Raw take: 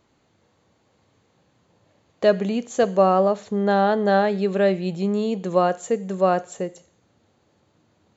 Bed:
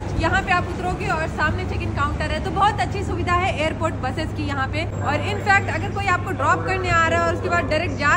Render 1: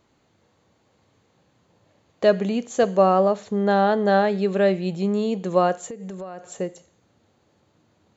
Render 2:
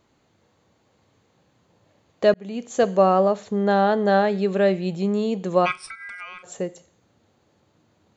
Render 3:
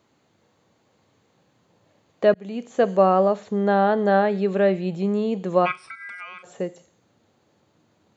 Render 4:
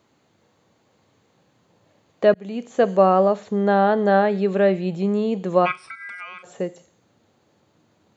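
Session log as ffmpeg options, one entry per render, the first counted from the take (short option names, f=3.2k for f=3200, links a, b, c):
-filter_complex "[0:a]asettb=1/sr,asplit=3[a][b][c];[a]atrim=end=5.864[d];[b]atrim=start=5.86:end=6.58,asetpts=PTS-STARTPTS,afade=t=in:d=0.004:c=qsin,afade=t=out:st=0.716:d=0.004:c=qsin,acompressor=threshold=-31dB:ratio=10:attack=3.2:release=140:knee=1:detection=peak[e];[c]atrim=start=6.576[f];[d][e]acrossfade=d=0.004:c1=hsin:c2=qsin[g];[g][f]acrossfade=d=0.004:c1=qsin:c2=hsin"
-filter_complex "[0:a]asplit=3[a][b][c];[a]afade=t=out:st=5.65:d=0.02[d];[b]aeval=exprs='val(0)*sin(2*PI*1800*n/s)':c=same,afade=t=in:st=5.65:d=0.02,afade=t=out:st=6.42:d=0.02[e];[c]afade=t=in:st=6.42:d=0.02[f];[d][e][f]amix=inputs=3:normalize=0,asplit=2[g][h];[g]atrim=end=2.34,asetpts=PTS-STARTPTS,afade=t=out:st=2.336:d=0.004:c=hsin[i];[h]atrim=start=2.34,asetpts=PTS-STARTPTS,afade=t=in:d=0.42[j];[i][j]concat=n=2:v=0:a=1"
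-filter_complex "[0:a]highpass=100,acrossover=split=3200[a][b];[b]acompressor=threshold=-52dB:ratio=4:attack=1:release=60[c];[a][c]amix=inputs=2:normalize=0"
-af "volume=1.5dB"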